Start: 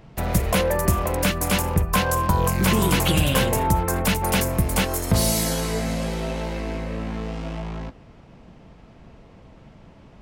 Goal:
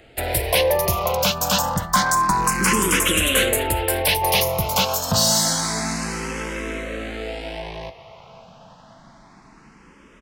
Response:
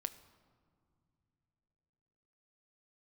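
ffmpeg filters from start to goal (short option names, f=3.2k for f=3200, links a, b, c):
-filter_complex "[0:a]asplit=2[a][b];[b]highpass=f=720:p=1,volume=11dB,asoftclip=type=tanh:threshold=-6.5dB[c];[a][c]amix=inputs=2:normalize=0,lowpass=f=4.7k:p=1,volume=-6dB,acrossover=split=490|4400[d][e][f];[e]aecho=1:1:535|1070|1605|2140|2675:0.224|0.11|0.0538|0.0263|0.0129[g];[f]acontrast=90[h];[d][g][h]amix=inputs=3:normalize=0,asplit=2[i][j];[j]afreqshift=0.28[k];[i][k]amix=inputs=2:normalize=1,volume=2dB"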